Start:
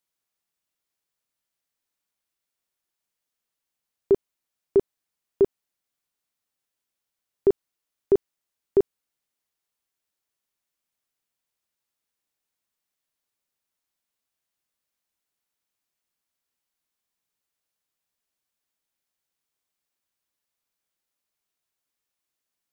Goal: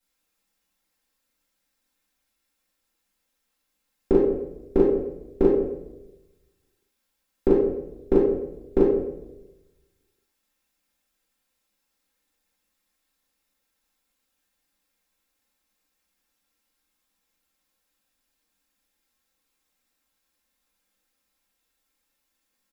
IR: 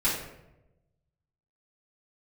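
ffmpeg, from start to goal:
-filter_complex "[0:a]aecho=1:1:3.8:0.6[link_01];[1:a]atrim=start_sample=2205[link_02];[link_01][link_02]afir=irnorm=-1:irlink=0,volume=-2.5dB"

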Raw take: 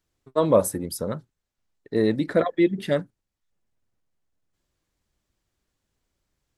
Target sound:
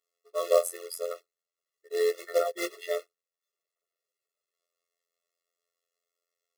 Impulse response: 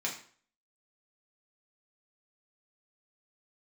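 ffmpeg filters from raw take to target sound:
-af "afftfilt=real='hypot(re,im)*cos(PI*b)':imag='0':win_size=2048:overlap=0.75,acrusher=bits=3:mode=log:mix=0:aa=0.000001,afftfilt=real='re*eq(mod(floor(b*sr/1024/360),2),1)':imag='im*eq(mod(floor(b*sr/1024/360),2),1)':win_size=1024:overlap=0.75"

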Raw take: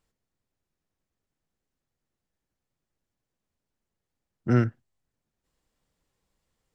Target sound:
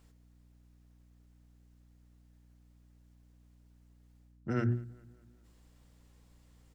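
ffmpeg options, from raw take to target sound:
ffmpeg -i in.wav -filter_complex "[0:a]bandreject=frequency=60:width_type=h:width=6,bandreject=frequency=120:width_type=h:width=6,bandreject=frequency=180:width_type=h:width=6,bandreject=frequency=240:width_type=h:width=6,bandreject=frequency=300:width_type=h:width=6,bandreject=frequency=360:width_type=h:width=6,areverse,acompressor=threshold=-36dB:ratio=20,areverse,aeval=exprs='val(0)+0.000316*(sin(2*PI*60*n/s)+sin(2*PI*2*60*n/s)/2+sin(2*PI*3*60*n/s)/3+sin(2*PI*4*60*n/s)/4+sin(2*PI*5*60*n/s)/5)':channel_layout=same,asplit=2[link_01][link_02];[link_02]adelay=201,lowpass=frequency=3700:poles=1,volume=-23.5dB,asplit=2[link_03][link_04];[link_04]adelay=201,lowpass=frequency=3700:poles=1,volume=0.54,asplit=2[link_05][link_06];[link_06]adelay=201,lowpass=frequency=3700:poles=1,volume=0.54,asplit=2[link_07][link_08];[link_08]adelay=201,lowpass=frequency=3700:poles=1,volume=0.54[link_09];[link_01][link_03][link_05][link_07][link_09]amix=inputs=5:normalize=0,volume=9dB" out.wav

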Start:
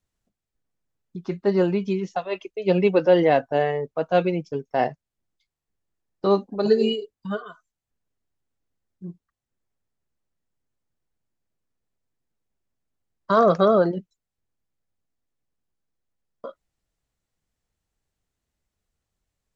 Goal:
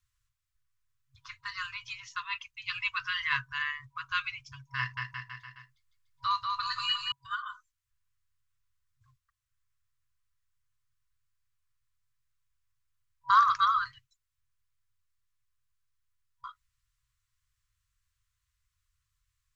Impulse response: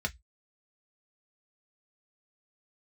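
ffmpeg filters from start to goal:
-filter_complex "[0:a]asettb=1/sr,asplit=3[link_01][link_02][link_03];[link_01]atrim=end=4.784[link_04];[link_02]atrim=start=4.78:end=7.12,asetpts=PTS-STARTPTS,afade=type=in:duration=0.004:curve=qsin,afade=type=out:start_time=2.336:duration=0.004:curve=qsin,aecho=1:1:190|361|514.9|653.4|778.1:0.631|0.398|0.251|0.158|0.1,atrim=end_sample=103194[link_05];[link_03]atrim=start=7.116[link_06];[link_04][link_05]acrossfade=duration=0.004:curve1=hsin:curve2=qsin[link_07];[link_07][link_06]acrossfade=duration=0.004:curve1=qsin:curve2=hsin,afftfilt=real='re*(1-between(b*sr/4096,130,970))':imag='im*(1-between(b*sr/4096,130,970))':win_size=4096:overlap=0.75,acontrast=89,volume=-5.5dB"

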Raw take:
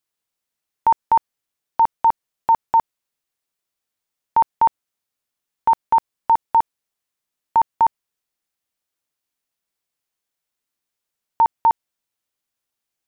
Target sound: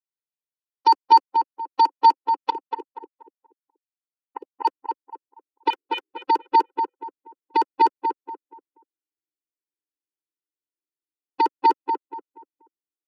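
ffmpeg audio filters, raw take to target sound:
ffmpeg -i in.wav -filter_complex "[0:a]asubboost=boost=8.5:cutoff=250,asettb=1/sr,asplit=3[link_01][link_02][link_03];[link_01]atrim=end=2.504[link_04];[link_02]atrim=start=2.5:end=4.65,asetpts=PTS-STARTPTS,afade=type=in:duration=0.004:curve=qsin,afade=type=out:start_time=2.146:duration=0.004:curve=qsin,agate=range=-12dB:threshold=-15dB:ratio=16:detection=peak[link_05];[link_03]atrim=start=4.646[link_06];[link_04][link_05]acrossfade=duration=0.004:curve1=hsin:curve2=qsin[link_07];[link_07][link_06]acrossfade=duration=0.004:curve1=qsin:curve2=hsin,acrossover=split=180|570[link_08][link_09][link_10];[link_08]aeval=exprs='0.168*sin(PI/2*5.01*val(0)/0.168)':channel_layout=same[link_11];[link_11][link_09][link_10]amix=inputs=3:normalize=0,asettb=1/sr,asplit=3[link_12][link_13][link_14];[link_12]atrim=end=5.704[link_15];[link_13]atrim=start=5.7:end=6.3,asetpts=PTS-STARTPTS,afade=type=in:duration=0.004:curve=qsin,afade=type=out:start_time=0.596:duration=0.004:curve=qsin,aeval=exprs='val(0)*sin(2*PI*280*n/s)':channel_layout=same[link_16];[link_14]atrim=start=6.296[link_17];[link_15][link_16]acrossfade=duration=0.004:curve1=hsin:curve2=qsin[link_18];[link_18][link_17]acrossfade=duration=0.004:curve1=qsin:curve2=hsin,aeval=exprs='0.447*(cos(1*acos(clip(val(0)/0.447,-1,1)))-cos(1*PI/2))+0.0282*(cos(2*acos(clip(val(0)/0.447,-1,1)))-cos(2*PI/2))+0.01*(cos(3*acos(clip(val(0)/0.447,-1,1)))-cos(3*PI/2))+0.0447*(cos(5*acos(clip(val(0)/0.447,-1,1)))-cos(5*PI/2))+0.1*(cos(7*acos(clip(val(0)/0.447,-1,1)))-cos(7*PI/2))':channel_layout=same,asplit=2[link_19][link_20];[link_20]adelay=239,lowpass=frequency=1500:poles=1,volume=-5dB,asplit=2[link_21][link_22];[link_22]adelay=239,lowpass=frequency=1500:poles=1,volume=0.32,asplit=2[link_23][link_24];[link_24]adelay=239,lowpass=frequency=1500:poles=1,volume=0.32,asplit=2[link_25][link_26];[link_26]adelay=239,lowpass=frequency=1500:poles=1,volume=0.32[link_27];[link_21][link_23][link_25][link_27]amix=inputs=4:normalize=0[link_28];[link_19][link_28]amix=inputs=2:normalize=0,afftfilt=real='re*eq(mod(floor(b*sr/1024/260),2),1)':imag='im*eq(mod(floor(b*sr/1024/260),2),1)':win_size=1024:overlap=0.75" out.wav

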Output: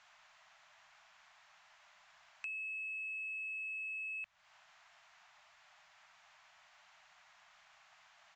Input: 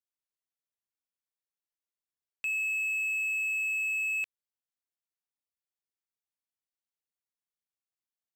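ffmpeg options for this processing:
ffmpeg -i in.wav -filter_complex "[0:a]aeval=exprs='val(0)+0.5*0.00282*sgn(val(0))':channel_layout=same,acrossover=split=250[link_01][link_02];[link_02]acompressor=threshold=-46dB:ratio=4[link_03];[link_01][link_03]amix=inputs=2:normalize=0,acrossover=split=530 2700:gain=0.126 1 0.158[link_04][link_05][link_06];[link_04][link_05][link_06]amix=inputs=3:normalize=0,aresample=16000,asoftclip=type=tanh:threshold=-39.5dB,aresample=44100,afftfilt=real='re*(1-between(b*sr/4096,210,590))':imag='im*(1-between(b*sr/4096,210,590))':win_size=4096:overlap=0.75,volume=7dB" out.wav

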